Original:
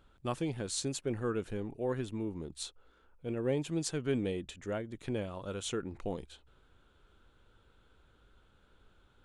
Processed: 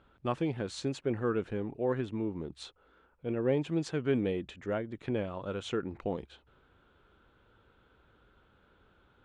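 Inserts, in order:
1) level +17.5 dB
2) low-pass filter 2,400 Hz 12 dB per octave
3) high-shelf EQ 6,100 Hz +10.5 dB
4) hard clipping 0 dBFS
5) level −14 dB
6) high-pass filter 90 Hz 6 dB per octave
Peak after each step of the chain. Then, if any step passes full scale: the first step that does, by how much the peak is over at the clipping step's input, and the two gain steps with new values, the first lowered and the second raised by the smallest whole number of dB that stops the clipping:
−2.5, −3.0, −3.0, −3.0, −17.0, −17.5 dBFS
no step passes full scale

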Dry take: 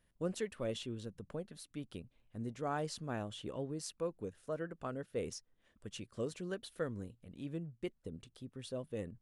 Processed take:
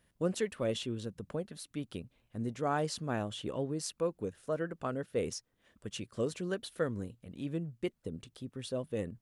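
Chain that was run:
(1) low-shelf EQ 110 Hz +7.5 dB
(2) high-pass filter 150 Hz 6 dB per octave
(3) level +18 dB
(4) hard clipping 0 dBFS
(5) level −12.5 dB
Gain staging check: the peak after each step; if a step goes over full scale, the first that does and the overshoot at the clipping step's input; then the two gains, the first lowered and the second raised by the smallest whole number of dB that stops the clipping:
−23.5, −24.0, −6.0, −6.0, −18.5 dBFS
no step passes full scale

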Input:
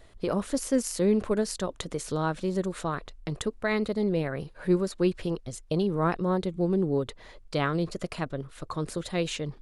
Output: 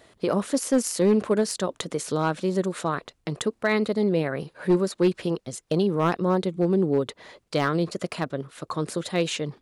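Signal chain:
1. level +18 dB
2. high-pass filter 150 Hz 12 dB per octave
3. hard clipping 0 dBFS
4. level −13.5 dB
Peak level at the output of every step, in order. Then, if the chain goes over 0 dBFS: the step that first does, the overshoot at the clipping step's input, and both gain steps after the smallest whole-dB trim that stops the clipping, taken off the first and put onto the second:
+5.0, +6.5, 0.0, −13.5 dBFS
step 1, 6.5 dB
step 1 +11 dB, step 4 −6.5 dB

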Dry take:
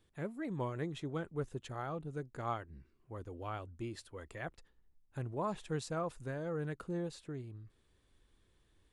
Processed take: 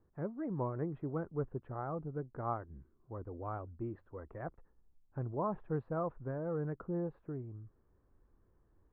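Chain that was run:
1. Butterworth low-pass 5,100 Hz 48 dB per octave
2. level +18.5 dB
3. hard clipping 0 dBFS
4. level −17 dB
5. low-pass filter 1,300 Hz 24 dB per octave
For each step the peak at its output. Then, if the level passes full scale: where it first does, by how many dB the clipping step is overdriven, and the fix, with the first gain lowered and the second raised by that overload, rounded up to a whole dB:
−24.0, −5.5, −5.5, −22.5, −23.5 dBFS
no step passes full scale

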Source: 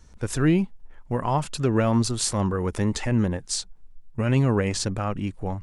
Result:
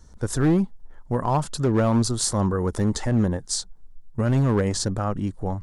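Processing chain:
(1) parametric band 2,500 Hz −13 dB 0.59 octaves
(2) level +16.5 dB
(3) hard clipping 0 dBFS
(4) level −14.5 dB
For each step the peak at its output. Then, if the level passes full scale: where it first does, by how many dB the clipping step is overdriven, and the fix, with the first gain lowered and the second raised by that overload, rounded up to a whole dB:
−10.5, +6.0, 0.0, −14.5 dBFS
step 2, 6.0 dB
step 2 +10.5 dB, step 4 −8.5 dB

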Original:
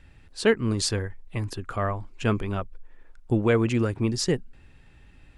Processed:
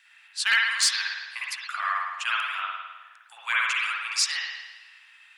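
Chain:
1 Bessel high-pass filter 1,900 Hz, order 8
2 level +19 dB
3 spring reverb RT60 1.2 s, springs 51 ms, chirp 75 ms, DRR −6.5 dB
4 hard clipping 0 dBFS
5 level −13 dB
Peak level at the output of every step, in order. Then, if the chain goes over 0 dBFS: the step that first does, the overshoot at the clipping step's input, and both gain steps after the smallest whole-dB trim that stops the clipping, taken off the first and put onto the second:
−15.5, +3.5, +4.0, 0.0, −13.0 dBFS
step 2, 4.0 dB
step 2 +15 dB, step 5 −9 dB

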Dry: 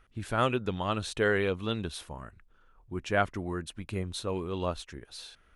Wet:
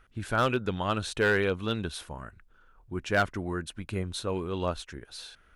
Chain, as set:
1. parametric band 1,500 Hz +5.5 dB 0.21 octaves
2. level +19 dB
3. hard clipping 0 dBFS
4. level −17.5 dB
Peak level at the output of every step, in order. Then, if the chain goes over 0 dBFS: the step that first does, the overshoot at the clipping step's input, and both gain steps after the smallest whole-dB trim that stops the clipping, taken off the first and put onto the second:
−11.0, +8.0, 0.0, −17.5 dBFS
step 2, 8.0 dB
step 2 +11 dB, step 4 −9.5 dB

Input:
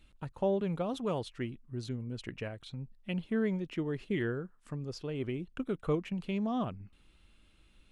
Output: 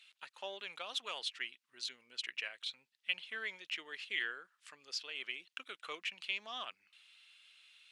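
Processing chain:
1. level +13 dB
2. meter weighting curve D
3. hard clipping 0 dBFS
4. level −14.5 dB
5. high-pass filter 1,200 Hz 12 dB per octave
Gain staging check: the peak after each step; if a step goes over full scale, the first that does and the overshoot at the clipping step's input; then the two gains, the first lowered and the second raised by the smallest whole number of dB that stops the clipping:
−7.0, −2.5, −2.5, −17.0, −18.5 dBFS
no step passes full scale

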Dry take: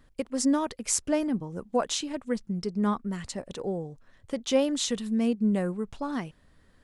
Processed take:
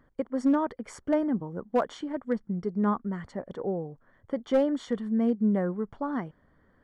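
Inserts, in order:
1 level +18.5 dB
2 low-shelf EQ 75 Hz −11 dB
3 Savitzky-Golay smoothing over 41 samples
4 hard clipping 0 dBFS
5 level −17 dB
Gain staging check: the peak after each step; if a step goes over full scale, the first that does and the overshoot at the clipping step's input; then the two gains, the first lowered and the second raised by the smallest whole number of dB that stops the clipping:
+9.5, +9.5, +6.0, 0.0, −17.0 dBFS
step 1, 6.0 dB
step 1 +12.5 dB, step 5 −11 dB

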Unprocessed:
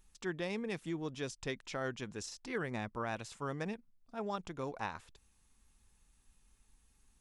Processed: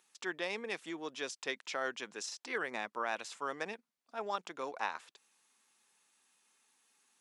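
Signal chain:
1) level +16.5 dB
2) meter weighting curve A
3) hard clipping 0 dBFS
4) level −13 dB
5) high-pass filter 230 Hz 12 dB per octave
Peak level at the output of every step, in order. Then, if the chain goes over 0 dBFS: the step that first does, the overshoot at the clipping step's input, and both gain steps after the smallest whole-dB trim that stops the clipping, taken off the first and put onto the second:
−7.0, −6.0, −6.0, −19.0, −20.0 dBFS
no step passes full scale

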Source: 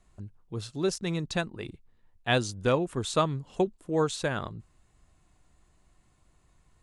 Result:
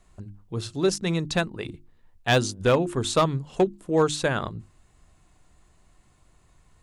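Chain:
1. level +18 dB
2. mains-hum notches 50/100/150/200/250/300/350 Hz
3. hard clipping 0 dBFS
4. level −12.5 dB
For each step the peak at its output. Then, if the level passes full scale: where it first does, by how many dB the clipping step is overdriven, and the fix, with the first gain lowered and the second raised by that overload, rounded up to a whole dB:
+7.5, +7.5, 0.0, −12.5 dBFS
step 1, 7.5 dB
step 1 +10 dB, step 4 −4.5 dB

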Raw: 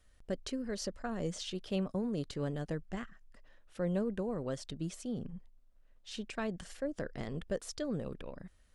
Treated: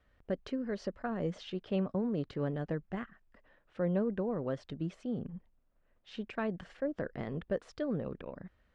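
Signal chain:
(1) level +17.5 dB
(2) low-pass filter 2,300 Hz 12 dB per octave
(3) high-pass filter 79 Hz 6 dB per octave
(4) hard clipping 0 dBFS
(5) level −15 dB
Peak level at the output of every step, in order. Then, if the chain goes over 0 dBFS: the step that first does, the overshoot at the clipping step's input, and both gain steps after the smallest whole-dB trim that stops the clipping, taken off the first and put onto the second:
−4.5, −5.0, −6.0, −6.0, −21.0 dBFS
no step passes full scale

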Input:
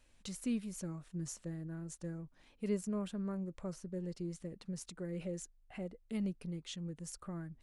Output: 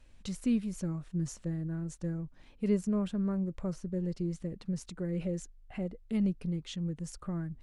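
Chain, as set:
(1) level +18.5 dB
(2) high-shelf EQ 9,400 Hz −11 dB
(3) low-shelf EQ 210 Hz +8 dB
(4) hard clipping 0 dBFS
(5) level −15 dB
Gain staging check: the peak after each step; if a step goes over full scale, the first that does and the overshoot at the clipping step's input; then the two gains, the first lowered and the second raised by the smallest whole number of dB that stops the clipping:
−5.5, −5.5, −2.5, −2.5, −17.5 dBFS
no step passes full scale

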